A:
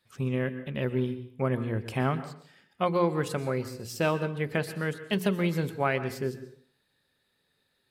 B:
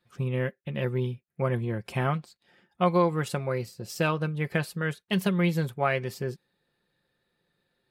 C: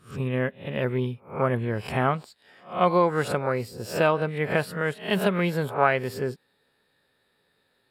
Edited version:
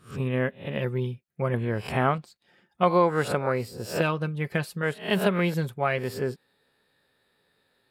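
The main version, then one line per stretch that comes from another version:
C
0:00.78–0:01.54: punch in from B
0:02.18–0:02.83: punch in from B
0:04.01–0:04.83: punch in from B
0:05.54–0:05.98: punch in from B
not used: A

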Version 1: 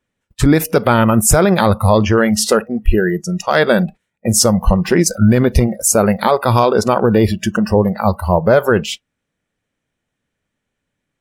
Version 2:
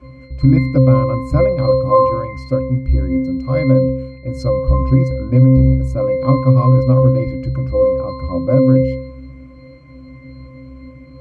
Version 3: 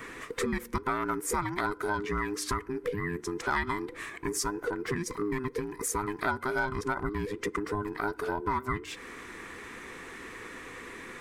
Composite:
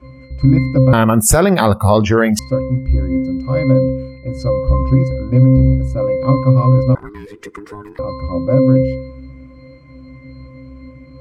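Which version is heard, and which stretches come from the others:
2
0:00.93–0:02.39: punch in from 1
0:06.95–0:07.99: punch in from 3

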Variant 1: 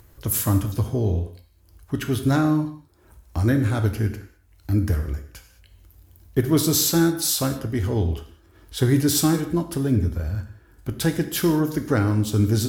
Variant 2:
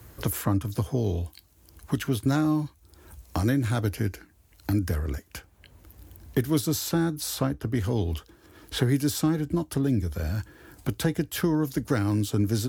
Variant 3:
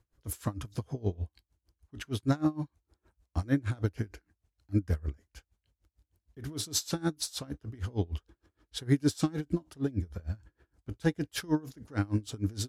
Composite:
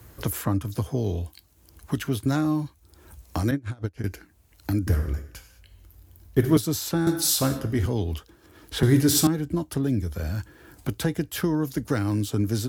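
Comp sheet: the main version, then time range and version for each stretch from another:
2
0:03.51–0:04.04: punch in from 3
0:04.87–0:06.57: punch in from 1
0:07.07–0:07.86: punch in from 1
0:08.83–0:09.27: punch in from 1

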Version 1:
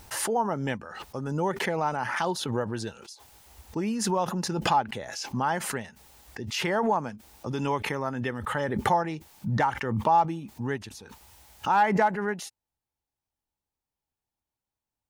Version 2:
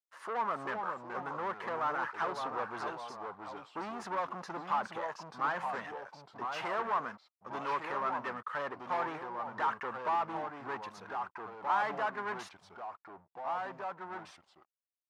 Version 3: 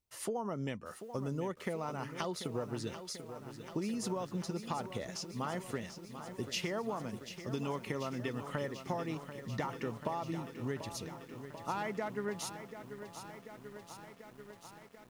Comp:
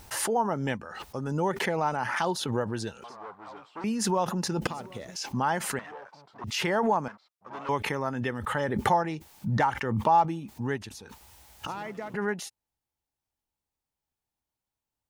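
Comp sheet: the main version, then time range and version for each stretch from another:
1
0:03.04–0:03.84: punch in from 2
0:04.67–0:05.16: punch in from 3
0:05.79–0:06.44: punch in from 2
0:07.08–0:07.69: punch in from 2
0:11.67–0:12.14: punch in from 3

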